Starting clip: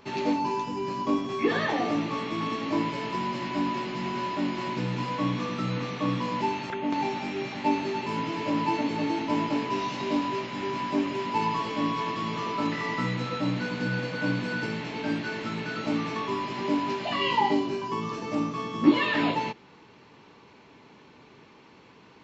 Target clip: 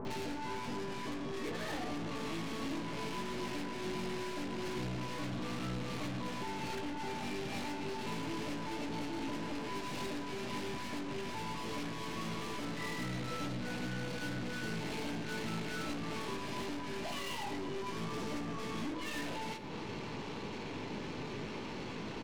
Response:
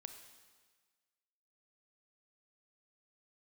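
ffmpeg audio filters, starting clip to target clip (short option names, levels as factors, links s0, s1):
-filter_complex "[0:a]acompressor=threshold=0.01:ratio=8,aeval=exprs='(tanh(447*val(0)+0.55)-tanh(0.55))/447':c=same,asplit=2[s0][s1];[s1]adelay=19,volume=0.266[s2];[s0][s2]amix=inputs=2:normalize=0,acrossover=split=1200[s3][s4];[s4]adelay=50[s5];[s3][s5]amix=inputs=2:normalize=0,asplit=2[s6][s7];[1:a]atrim=start_sample=2205,asetrate=39249,aresample=44100,lowshelf=f=500:g=8.5[s8];[s7][s8]afir=irnorm=-1:irlink=0,volume=1.06[s9];[s6][s9]amix=inputs=2:normalize=0,volume=3.16"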